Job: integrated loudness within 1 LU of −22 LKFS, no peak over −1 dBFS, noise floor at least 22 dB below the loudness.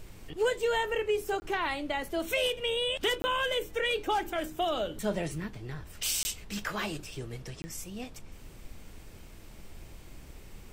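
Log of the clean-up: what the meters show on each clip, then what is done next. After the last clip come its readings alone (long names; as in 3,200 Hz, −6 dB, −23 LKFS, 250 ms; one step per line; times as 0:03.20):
number of dropouts 4; longest dropout 20 ms; background noise floor −49 dBFS; target noise floor −54 dBFS; integrated loudness −31.5 LKFS; sample peak −15.5 dBFS; target loudness −22.0 LKFS
→ repair the gap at 0:01.40/0:03.22/0:06.23/0:07.62, 20 ms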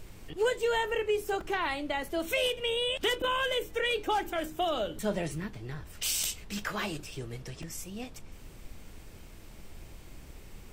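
number of dropouts 0; background noise floor −49 dBFS; target noise floor −54 dBFS
→ noise reduction from a noise print 6 dB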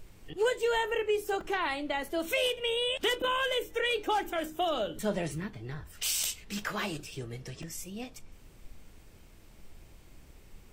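background noise floor −55 dBFS; integrated loudness −31.5 LKFS; sample peak −15.5 dBFS; target loudness −22.0 LKFS
→ level +9.5 dB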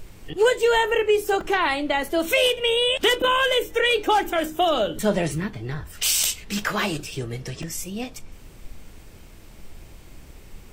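integrated loudness −22.0 LKFS; sample peak −6.0 dBFS; background noise floor −46 dBFS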